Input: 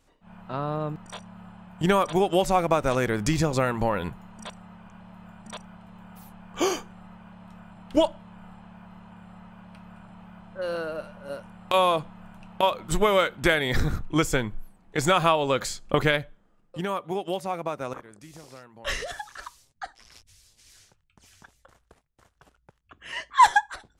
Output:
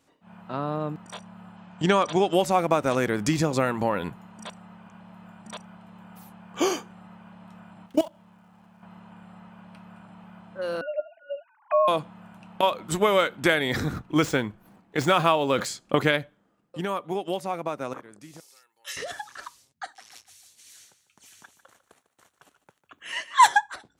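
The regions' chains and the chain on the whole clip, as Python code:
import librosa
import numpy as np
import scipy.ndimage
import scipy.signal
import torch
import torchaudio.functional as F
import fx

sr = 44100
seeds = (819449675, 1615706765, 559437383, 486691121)

y = fx.chain(x, sr, fx.lowpass(hz=6700.0, slope=24),
    fx.high_shelf(hz=4300.0, db=8.0), at=(1.56, 2.33))
y = fx.chain(y, sr, fx.dead_time(dead_ms=0.057),
    fx.level_steps(step_db=18), at=(7.86, 8.83))
y = fx.chain(y, sr, fx.sine_speech(),
    fx.small_body(hz=(290.0, 680.0), ring_ms=75, db=16),
    fx.env_phaser(low_hz=380.0, high_hz=2300.0, full_db=-24.0), at=(10.81, 11.88))
y = fx.chain(y, sr, fx.median_filter(points=5),
    fx.sustainer(db_per_s=130.0), at=(13.93, 15.66))
y = fx.chain(y, sr, fx.differentiator(),
    fx.comb(ms=2.3, depth=0.56), at=(18.4, 18.97))
y = fx.chain(y, sr, fx.tilt_eq(slope=2.0),
    fx.notch(hz=5000.0, q=7.8),
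    fx.echo_feedback(ms=149, feedback_pct=44, wet_db=-14), at=(19.83, 23.48))
y = scipy.signal.sosfilt(scipy.signal.butter(2, 120.0, 'highpass', fs=sr, output='sos'), y)
y = fx.peak_eq(y, sr, hz=280.0, db=3.5, octaves=0.37)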